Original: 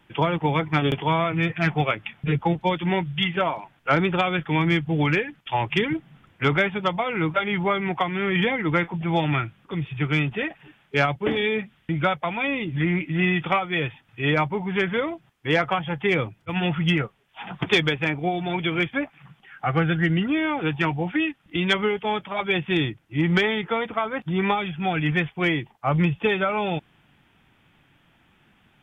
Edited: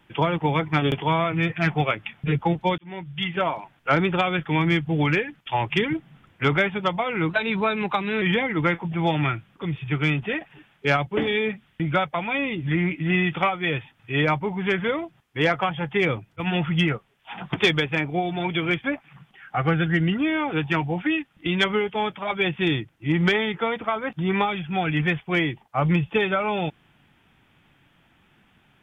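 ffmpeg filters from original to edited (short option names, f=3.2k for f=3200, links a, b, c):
-filter_complex "[0:a]asplit=4[a][b][c][d];[a]atrim=end=2.78,asetpts=PTS-STARTPTS,afade=t=out:st=2.776:d=0.004:c=hsin[e];[b]atrim=start=2.78:end=7.294,asetpts=PTS-STARTPTS,afade=t=in:d=0.69[f];[c]atrim=start=7.29:end=8.31,asetpts=PTS-STARTPTS,asetrate=48510,aresample=44100[g];[d]atrim=start=8.306[h];[e][f]concat=n=2:v=0:a=1[i];[i][g]acrossfade=d=0.004:c1=hsin:c2=hsin[j];[j][h]acrossfade=d=0.004:c1=hsin:c2=hsin"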